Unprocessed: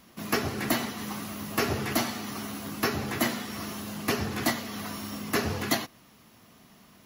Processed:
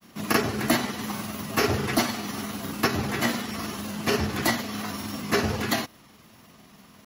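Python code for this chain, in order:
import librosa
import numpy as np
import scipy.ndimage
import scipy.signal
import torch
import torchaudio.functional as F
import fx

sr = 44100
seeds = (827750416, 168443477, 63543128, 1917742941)

y = fx.granulator(x, sr, seeds[0], grain_ms=100.0, per_s=20.0, spray_ms=20.0, spread_st=0)
y = F.gain(torch.from_numpy(y), 5.0).numpy()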